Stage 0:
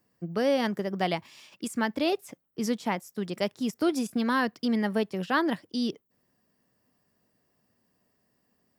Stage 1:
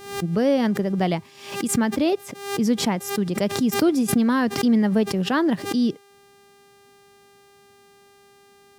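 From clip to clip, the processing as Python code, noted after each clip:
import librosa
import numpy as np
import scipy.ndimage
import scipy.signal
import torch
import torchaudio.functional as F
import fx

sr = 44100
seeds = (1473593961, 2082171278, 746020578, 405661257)

y = fx.low_shelf(x, sr, hz=400.0, db=11.5)
y = fx.dmg_buzz(y, sr, base_hz=400.0, harmonics=34, level_db=-54.0, tilt_db=-5, odd_only=False)
y = fx.pre_swell(y, sr, db_per_s=90.0)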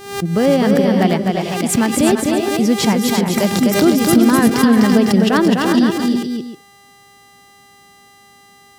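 y = fx.echo_multitap(x, sr, ms=(253, 339, 359, 504, 642), db=(-4.0, -9.0, -9.5, -8.0, -16.0))
y = F.gain(torch.from_numpy(y), 5.5).numpy()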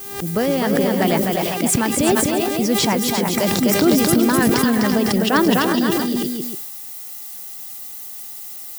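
y = fx.dmg_noise_colour(x, sr, seeds[0], colour='violet', level_db=-31.0)
y = fx.hpss(y, sr, part='percussive', gain_db=8)
y = fx.sustainer(y, sr, db_per_s=29.0)
y = F.gain(torch.from_numpy(y), -7.5).numpy()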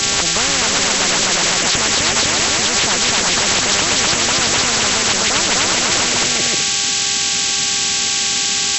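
y = fx.freq_compress(x, sr, knee_hz=1000.0, ratio=1.5)
y = fx.hum_notches(y, sr, base_hz=50, count=3)
y = fx.spectral_comp(y, sr, ratio=10.0)
y = F.gain(torch.from_numpy(y), 3.0).numpy()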